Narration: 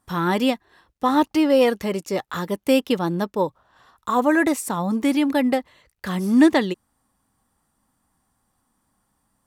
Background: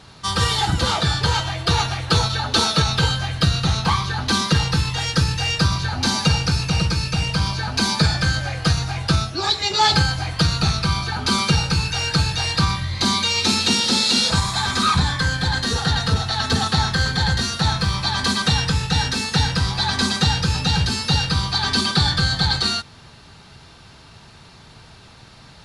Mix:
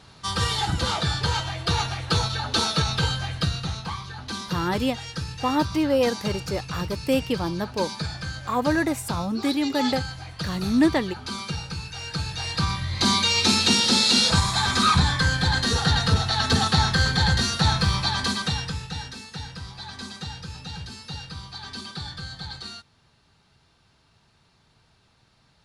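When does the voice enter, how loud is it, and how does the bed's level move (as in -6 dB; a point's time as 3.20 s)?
4.40 s, -4.5 dB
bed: 3.31 s -5 dB
3.90 s -13 dB
11.92 s -13 dB
13.10 s -1 dB
17.96 s -1 dB
19.25 s -17 dB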